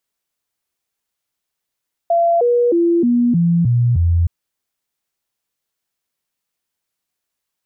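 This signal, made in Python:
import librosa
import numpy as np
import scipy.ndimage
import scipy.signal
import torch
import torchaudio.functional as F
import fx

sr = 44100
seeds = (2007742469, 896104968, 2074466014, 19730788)

y = fx.stepped_sweep(sr, from_hz=681.0, direction='down', per_octave=2, tones=7, dwell_s=0.31, gap_s=0.0, level_db=-11.0)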